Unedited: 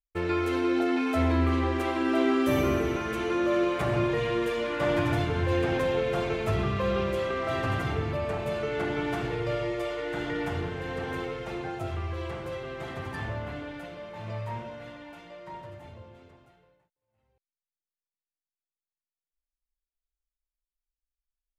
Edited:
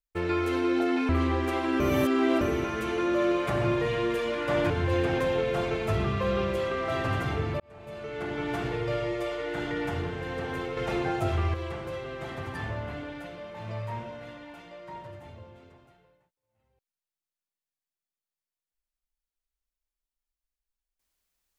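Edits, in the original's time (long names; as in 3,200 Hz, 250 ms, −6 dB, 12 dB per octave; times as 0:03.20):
0:01.09–0:01.41: remove
0:02.12–0:02.73: reverse
0:05.02–0:05.29: remove
0:08.19–0:09.23: fade in
0:11.36–0:12.13: clip gain +6 dB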